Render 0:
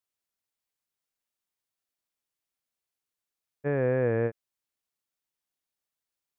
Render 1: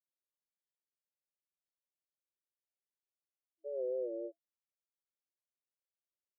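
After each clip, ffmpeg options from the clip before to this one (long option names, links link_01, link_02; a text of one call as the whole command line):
ffmpeg -i in.wav -af "equalizer=frequency=410:width_type=o:width=1.4:gain=-14,afftfilt=real='re*between(b*sr/4096,320,670)':imag='im*between(b*sr/4096,320,670)':win_size=4096:overlap=0.75,aecho=1:1:5.5:0.6" out.wav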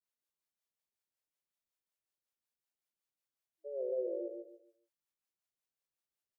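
ffmpeg -i in.wav -filter_complex "[0:a]acrossover=split=450[link_01][link_02];[link_01]aeval=exprs='val(0)*(1-0.7/2+0.7/2*cos(2*PI*5.4*n/s))':channel_layout=same[link_03];[link_02]aeval=exprs='val(0)*(1-0.7/2-0.7/2*cos(2*PI*5.4*n/s))':channel_layout=same[link_04];[link_03][link_04]amix=inputs=2:normalize=0,asplit=2[link_05][link_06];[link_06]aecho=0:1:143|286|429|572:0.631|0.183|0.0531|0.0154[link_07];[link_05][link_07]amix=inputs=2:normalize=0,volume=2.5dB" out.wav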